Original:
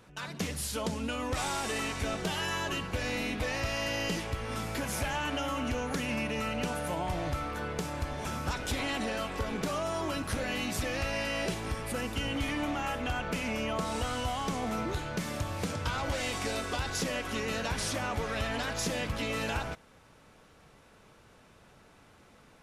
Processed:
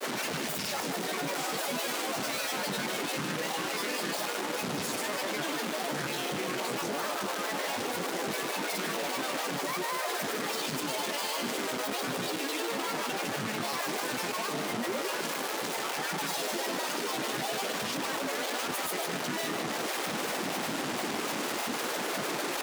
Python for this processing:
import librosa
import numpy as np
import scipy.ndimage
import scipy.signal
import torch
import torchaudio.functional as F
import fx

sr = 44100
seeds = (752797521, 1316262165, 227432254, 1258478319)

p1 = np.sign(x) * np.sqrt(np.mean(np.square(x)))
p2 = scipy.signal.sosfilt(scipy.signal.butter(4, 270.0, 'highpass', fs=sr, output='sos'), p1)
p3 = fx.peak_eq(p2, sr, hz=370.0, db=6.0, octaves=0.61)
p4 = fx.granulator(p3, sr, seeds[0], grain_ms=100.0, per_s=20.0, spray_ms=100.0, spread_st=12)
p5 = p4 + fx.echo_single(p4, sr, ms=153, db=-7.5, dry=0)
y = fx.env_flatten(p5, sr, amount_pct=50)